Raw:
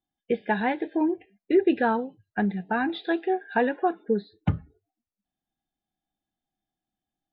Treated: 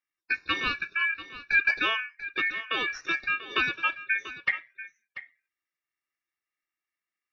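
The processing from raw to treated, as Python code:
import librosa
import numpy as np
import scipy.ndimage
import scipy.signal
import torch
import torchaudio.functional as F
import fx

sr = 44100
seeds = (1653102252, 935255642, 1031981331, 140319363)

y = fx.cheby_harmonics(x, sr, harmonics=(3, 6), levels_db=(-32, -45), full_scale_db=-10.5)
y = y * np.sin(2.0 * np.pi * 2000.0 * np.arange(len(y)) / sr)
y = y + 10.0 ** (-14.5 / 20.0) * np.pad(y, (int(689 * sr / 1000.0), 0))[:len(y)]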